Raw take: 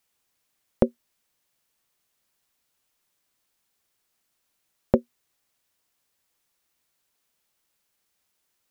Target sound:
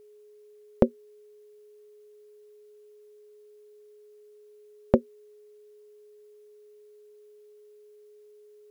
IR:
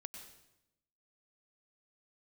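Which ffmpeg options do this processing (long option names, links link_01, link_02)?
-af "aeval=exprs='val(0)+0.00282*sin(2*PI*420*n/s)':channel_layout=same"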